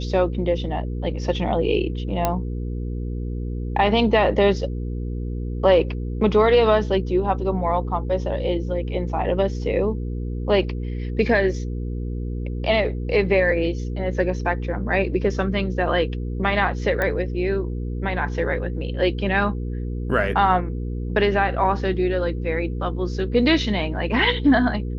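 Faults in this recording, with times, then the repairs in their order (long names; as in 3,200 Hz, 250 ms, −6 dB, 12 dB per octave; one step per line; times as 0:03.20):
mains hum 60 Hz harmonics 8 −27 dBFS
0:02.25: click −6 dBFS
0:17.02: click −11 dBFS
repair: click removal
hum removal 60 Hz, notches 8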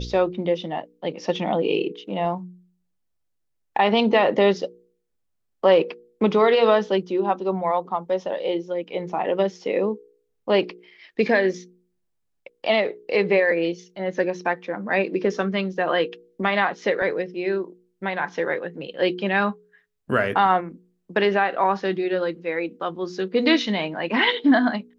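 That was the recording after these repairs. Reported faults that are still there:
0:17.02: click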